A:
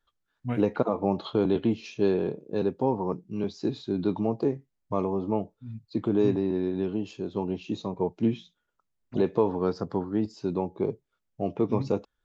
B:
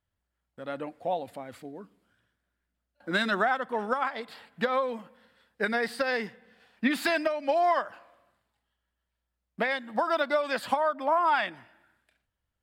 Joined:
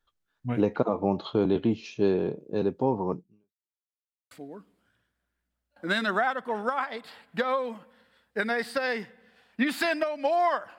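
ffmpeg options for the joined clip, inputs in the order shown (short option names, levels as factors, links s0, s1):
-filter_complex "[0:a]apad=whole_dur=10.78,atrim=end=10.78,asplit=2[s0][s1];[s0]atrim=end=3.74,asetpts=PTS-STARTPTS,afade=t=out:st=3.19:d=0.55:c=exp[s2];[s1]atrim=start=3.74:end=4.31,asetpts=PTS-STARTPTS,volume=0[s3];[1:a]atrim=start=1.55:end=8.02,asetpts=PTS-STARTPTS,afade=t=in:d=0.004:c=hsin[s4];[s2][s3][s4]concat=n=3:v=0:a=1"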